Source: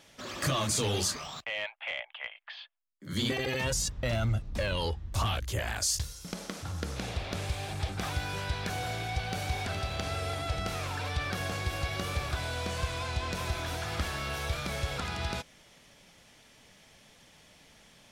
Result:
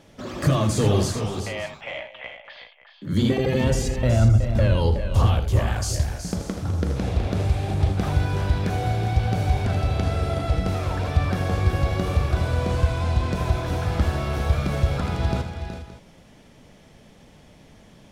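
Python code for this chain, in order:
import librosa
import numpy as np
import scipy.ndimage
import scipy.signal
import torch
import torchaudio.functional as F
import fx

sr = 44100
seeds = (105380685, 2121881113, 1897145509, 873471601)

p1 = fx.tilt_shelf(x, sr, db=7.5, hz=930.0)
p2 = p1 + fx.echo_multitap(p1, sr, ms=(81, 371, 406, 571), db=(-10.0, -9.5, -12.5, -16.5), dry=0)
y = p2 * 10.0 ** (5.0 / 20.0)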